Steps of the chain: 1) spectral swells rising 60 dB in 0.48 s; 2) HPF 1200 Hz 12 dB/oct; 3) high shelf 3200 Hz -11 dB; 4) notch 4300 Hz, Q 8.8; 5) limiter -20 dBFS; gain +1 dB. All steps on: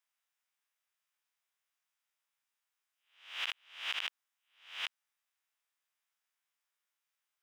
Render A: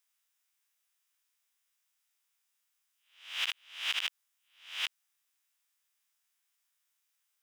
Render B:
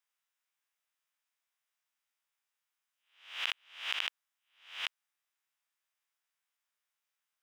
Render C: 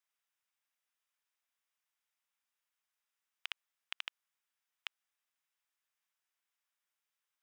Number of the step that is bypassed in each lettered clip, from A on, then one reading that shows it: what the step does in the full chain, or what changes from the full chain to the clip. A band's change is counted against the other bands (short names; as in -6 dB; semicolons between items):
3, 8 kHz band +6.5 dB; 5, crest factor change +4.5 dB; 1, crest factor change +8.0 dB